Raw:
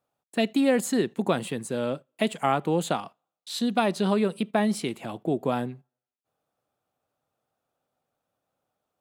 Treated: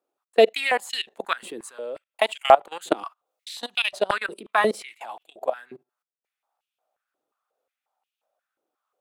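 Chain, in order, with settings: 2.97–3.72 s: treble shelf 3.5 kHz +3.5 dB; level held to a coarse grid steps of 23 dB; step-sequenced high-pass 5.6 Hz 350–2800 Hz; trim +6.5 dB

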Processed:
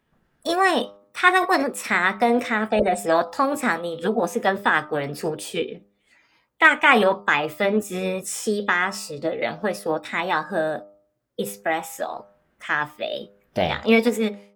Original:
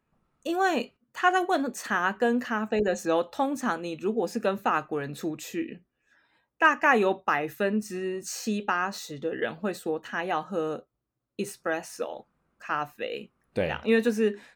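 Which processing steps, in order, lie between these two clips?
fade out at the end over 0.52 s; formant shift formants +4 st; de-hum 100.9 Hz, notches 13; trim +6 dB

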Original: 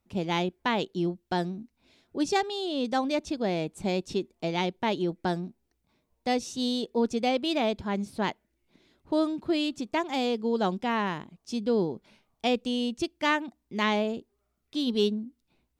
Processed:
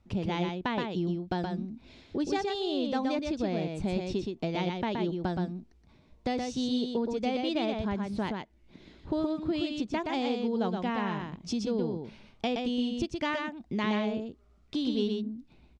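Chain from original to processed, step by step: low-pass 5.6 kHz 12 dB/octave; bass shelf 170 Hz +10 dB; compression 3:1, threshold -39 dBFS, peak gain reduction 15.5 dB; on a send: delay 122 ms -4 dB; on the sum: trim +6.5 dB

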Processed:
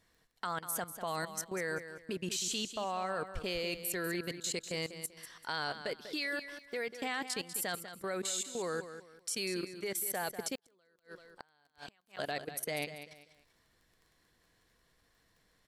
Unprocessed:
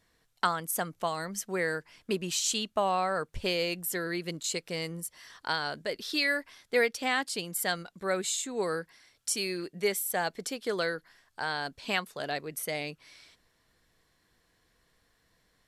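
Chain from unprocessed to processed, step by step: level held to a coarse grid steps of 18 dB; feedback delay 194 ms, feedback 29%, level -11 dB; 10.55–12.17 s: inverted gate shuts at -34 dBFS, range -35 dB; crackle 15 per s -54 dBFS

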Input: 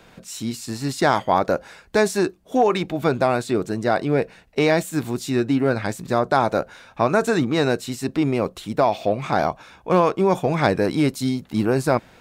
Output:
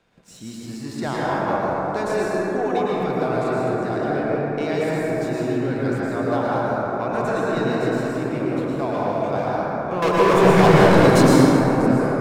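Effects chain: 10.02–11.34 s: waveshaping leveller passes 5; treble shelf 12 kHz -10.5 dB; waveshaping leveller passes 1; reverberation RT60 4.7 s, pre-delay 98 ms, DRR -7.5 dB; trim -13.5 dB

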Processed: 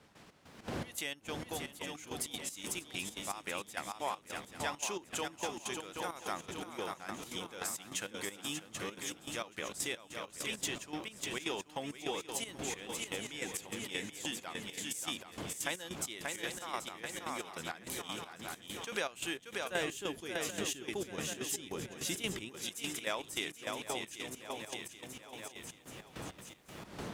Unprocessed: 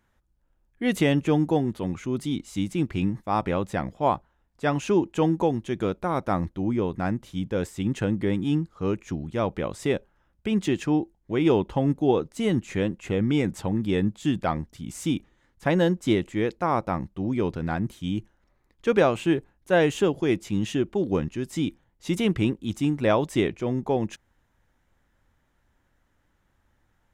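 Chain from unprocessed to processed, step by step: fade-in on the opening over 2.42 s; wind noise 160 Hz -29 dBFS; differentiator; shuffle delay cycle 780 ms, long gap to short 3:1, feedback 46%, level -6.5 dB; trance gate "..xx..xx.xx" 199 bpm -12 dB; 19.71–22.49 s: bass shelf 360 Hz +10.5 dB; compression 2:1, threshold -54 dBFS, peak gain reduction 12 dB; tape noise reduction on one side only encoder only; trim +13.5 dB

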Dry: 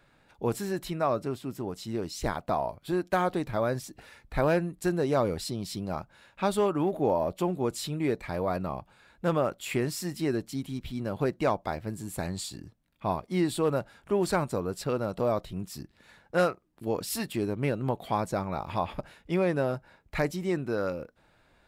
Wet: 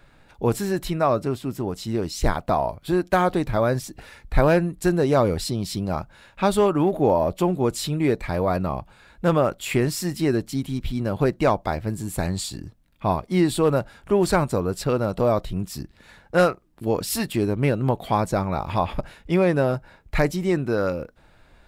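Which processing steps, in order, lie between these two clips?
bass shelf 61 Hz +12 dB; trim +6.5 dB

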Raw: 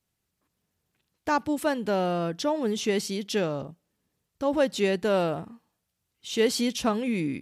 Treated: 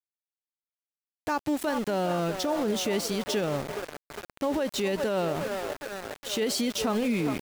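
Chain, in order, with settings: vibrato 0.45 Hz 6 cents; feedback echo behind a band-pass 407 ms, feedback 68%, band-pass 770 Hz, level -10 dB; small samples zeroed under -34.5 dBFS; peak limiter -21.5 dBFS, peak gain reduction 10.5 dB; trim +2.5 dB

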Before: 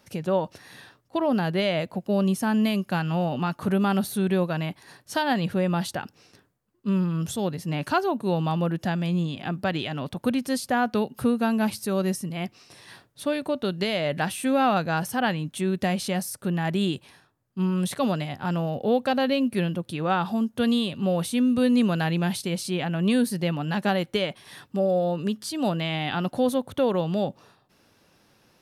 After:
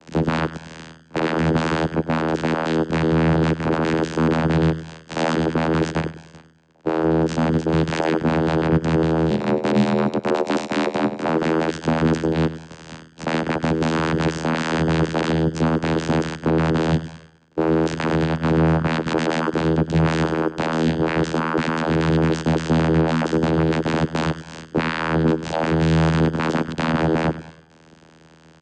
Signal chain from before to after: in parallel at -7 dB: sine folder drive 13 dB, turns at -11 dBFS; on the sum: crackle 220 per s -40 dBFS; full-wave rectifier; vocoder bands 8, saw 80.5 Hz; 9.30–11.29 s: frequency shift +46 Hz; on a send: feedback delay 100 ms, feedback 38%, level -14.5 dB; on the sum: trim +7 dB

